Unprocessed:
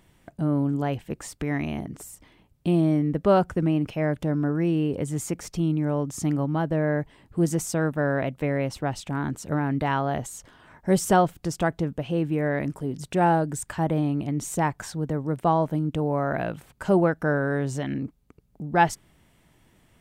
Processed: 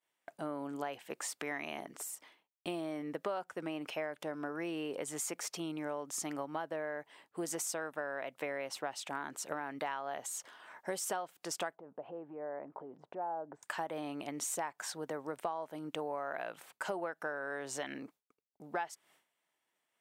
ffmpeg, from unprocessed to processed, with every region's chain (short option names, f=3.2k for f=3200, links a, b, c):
-filter_complex "[0:a]asettb=1/sr,asplit=3[a][b][c];[a]atrim=end=11.754[d];[b]atrim=start=11.75:end=13.63,asetpts=PTS-STARTPTS,afade=t=in:d=0.004:c=qsin,afade=t=out:st=1.876:d=0.004:c=qsin,acompressor=threshold=-34dB:ratio=4:attack=3.2:release=140:knee=1:detection=peak,lowpass=f=830:t=q:w=1.5[e];[c]atrim=start=13.626[f];[d][e]acrossfade=d=0.004:c1=hsin:c2=qsin[g];[g][f]acrossfade=d=0.004:c1=qsin:c2=hsin,highpass=620,agate=range=-33dB:threshold=-54dB:ratio=3:detection=peak,acompressor=threshold=-34dB:ratio=12"